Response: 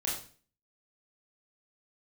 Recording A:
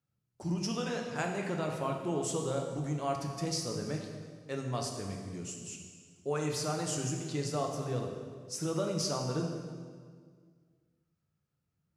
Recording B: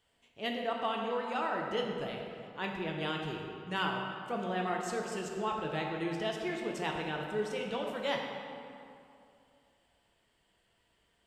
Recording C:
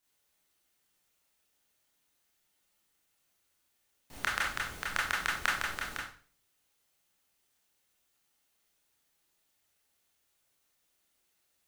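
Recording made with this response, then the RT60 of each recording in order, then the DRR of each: C; 1.8, 2.6, 0.40 seconds; 1.0, 0.0, −5.0 decibels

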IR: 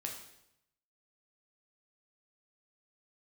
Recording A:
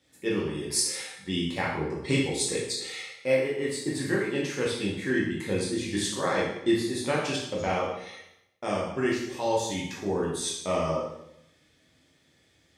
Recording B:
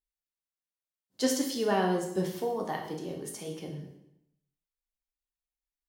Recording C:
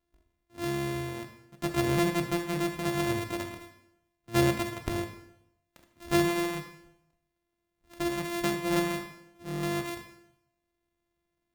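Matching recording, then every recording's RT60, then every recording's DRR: B; 0.80, 0.80, 0.80 seconds; −5.5, 0.5, 5.0 decibels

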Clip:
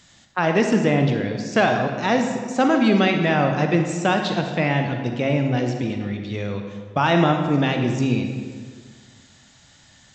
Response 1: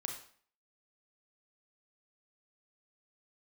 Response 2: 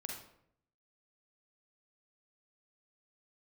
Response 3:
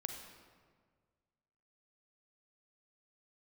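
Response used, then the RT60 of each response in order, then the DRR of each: 3; 0.50, 0.70, 1.7 seconds; 2.0, 0.0, 4.0 decibels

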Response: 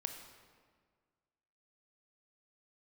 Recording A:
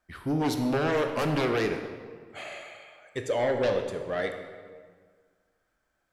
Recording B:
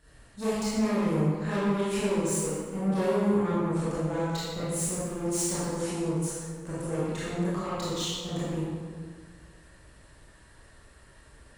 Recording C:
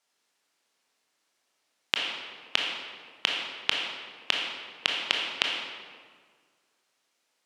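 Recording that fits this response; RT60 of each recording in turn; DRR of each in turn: A; 1.7, 1.7, 1.7 seconds; 5.0, −11.0, −1.0 decibels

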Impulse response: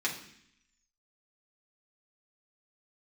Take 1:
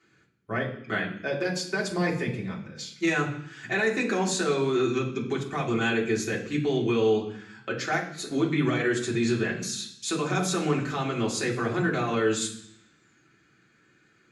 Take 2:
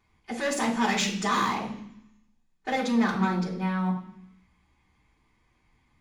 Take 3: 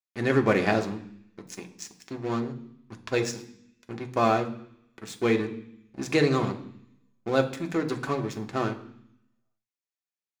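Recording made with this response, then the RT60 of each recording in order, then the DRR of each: 1; 0.65, 0.65, 0.65 seconds; −4.5, −11.5, 4.0 decibels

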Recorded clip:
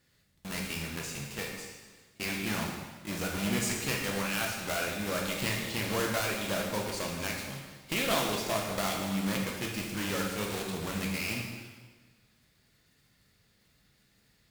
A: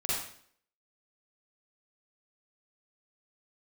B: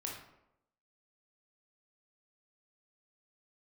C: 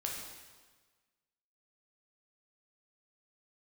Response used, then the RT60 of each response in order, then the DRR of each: C; 0.60, 0.85, 1.4 seconds; −8.5, −2.0, −1.5 decibels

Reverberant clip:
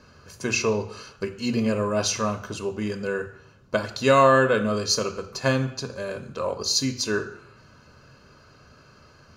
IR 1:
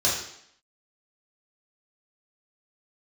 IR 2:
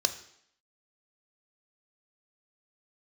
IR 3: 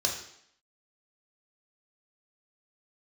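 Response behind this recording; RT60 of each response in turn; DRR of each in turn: 2; 0.70, 0.70, 0.70 seconds; −7.0, 8.5, −0.5 decibels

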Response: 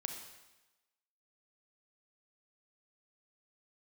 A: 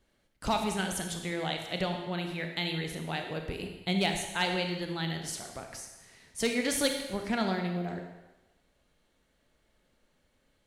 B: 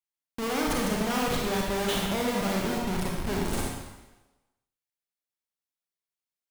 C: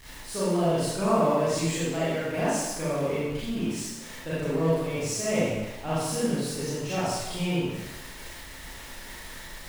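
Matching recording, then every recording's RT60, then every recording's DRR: A; 1.1, 1.1, 1.1 seconds; 4.0, −2.0, −11.0 decibels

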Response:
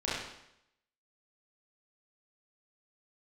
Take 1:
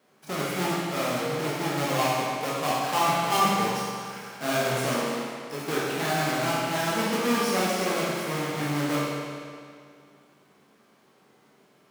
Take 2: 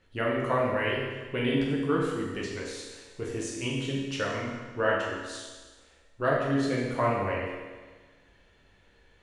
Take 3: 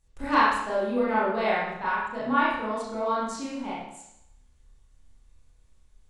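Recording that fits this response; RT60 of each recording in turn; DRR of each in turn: 3; 2.2, 1.4, 0.80 seconds; −8.0, −4.5, −9.0 decibels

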